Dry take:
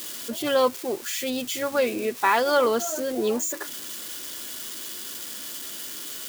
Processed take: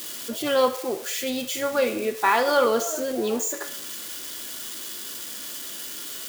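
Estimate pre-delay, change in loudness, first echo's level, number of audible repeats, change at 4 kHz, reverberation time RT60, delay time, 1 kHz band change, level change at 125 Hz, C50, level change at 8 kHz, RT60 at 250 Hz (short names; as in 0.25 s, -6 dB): 18 ms, +0.5 dB, none, none, +0.5 dB, 0.70 s, none, +0.5 dB, n/a, 11.5 dB, +0.5 dB, 0.75 s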